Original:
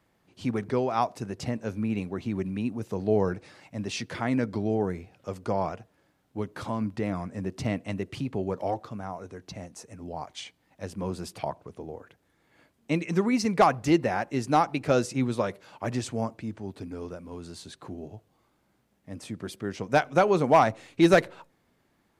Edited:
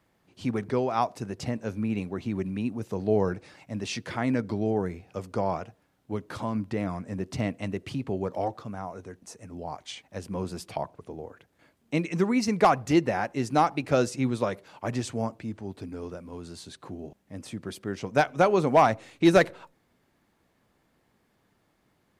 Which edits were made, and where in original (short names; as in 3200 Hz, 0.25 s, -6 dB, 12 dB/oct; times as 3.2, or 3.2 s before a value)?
shrink pauses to 60%